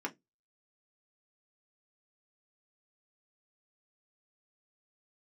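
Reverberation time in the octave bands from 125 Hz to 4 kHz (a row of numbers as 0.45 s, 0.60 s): 0.25 s, 0.25 s, 0.20 s, 0.10 s, 0.15 s, 0.15 s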